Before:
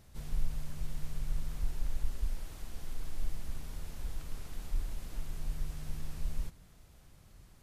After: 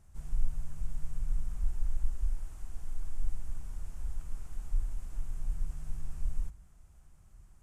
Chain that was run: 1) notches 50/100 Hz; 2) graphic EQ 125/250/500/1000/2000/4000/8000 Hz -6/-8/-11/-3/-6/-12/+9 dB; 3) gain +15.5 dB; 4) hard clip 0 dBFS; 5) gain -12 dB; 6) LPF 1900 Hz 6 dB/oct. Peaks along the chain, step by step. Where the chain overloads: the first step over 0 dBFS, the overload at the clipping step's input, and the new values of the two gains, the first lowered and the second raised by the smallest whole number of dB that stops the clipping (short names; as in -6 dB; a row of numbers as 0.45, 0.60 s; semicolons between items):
-18.0, -18.5, -3.0, -3.0, -15.0, -15.0 dBFS; no overload